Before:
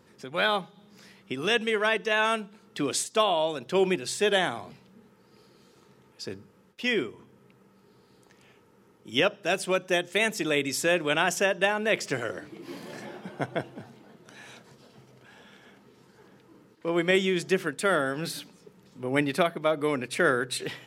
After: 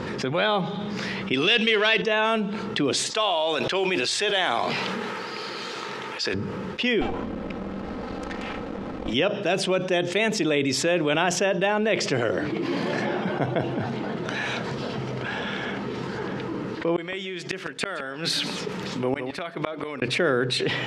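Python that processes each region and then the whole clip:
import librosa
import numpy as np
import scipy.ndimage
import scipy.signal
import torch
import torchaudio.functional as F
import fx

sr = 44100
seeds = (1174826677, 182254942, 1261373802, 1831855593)

y = fx.chain(x, sr, fx.lowpass(hz=11000.0, slope=12),
    fx.leveller(passes=1),
    fx.weighting(curve='D'), at=(1.33, 2.02))
y = fx.chain(y, sr, fx.highpass(hz=1300.0, slope=6),
    fx.mod_noise(seeds[0], snr_db=25),
    fx.sustainer(db_per_s=45.0), at=(3.1, 6.34))
y = fx.chain(y, sr, fx.lower_of_two(delay_ms=3.8),
    fx.backlash(play_db=-58.0), at=(7.01, 9.14))
y = fx.chain(y, sr, fx.gate_flip(shuts_db=-20.0, range_db=-35),
    fx.tilt_eq(slope=2.0),
    fx.echo_single(ms=165, db=-23.5), at=(16.96, 20.02))
y = scipy.signal.sosfilt(scipy.signal.butter(2, 3900.0, 'lowpass', fs=sr, output='sos'), y)
y = fx.dynamic_eq(y, sr, hz=1600.0, q=1.0, threshold_db=-41.0, ratio=4.0, max_db=-5)
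y = fx.env_flatten(y, sr, amount_pct=70)
y = y * 10.0 ** (-3.0 / 20.0)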